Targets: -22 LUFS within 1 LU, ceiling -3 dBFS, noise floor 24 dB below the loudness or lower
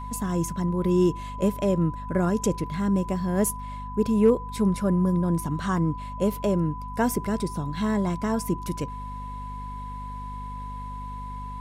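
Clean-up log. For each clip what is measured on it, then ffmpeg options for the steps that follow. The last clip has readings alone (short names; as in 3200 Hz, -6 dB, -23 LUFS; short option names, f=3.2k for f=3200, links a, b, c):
hum 50 Hz; harmonics up to 250 Hz; hum level -35 dBFS; steady tone 1000 Hz; tone level -36 dBFS; loudness -25.5 LUFS; peak -9.0 dBFS; loudness target -22.0 LUFS
-> -af "bandreject=f=50:t=h:w=6,bandreject=f=100:t=h:w=6,bandreject=f=150:t=h:w=6,bandreject=f=200:t=h:w=6,bandreject=f=250:t=h:w=6"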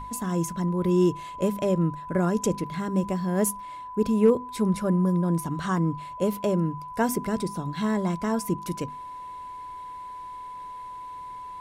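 hum none; steady tone 1000 Hz; tone level -36 dBFS
-> -af "bandreject=f=1k:w=30"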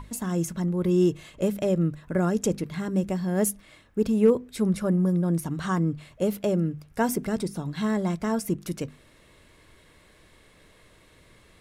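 steady tone none; loudness -26.5 LUFS; peak -9.0 dBFS; loudness target -22.0 LUFS
-> -af "volume=4.5dB"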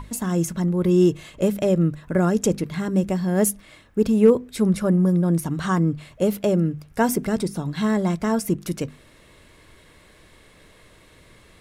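loudness -22.0 LUFS; peak -4.5 dBFS; noise floor -52 dBFS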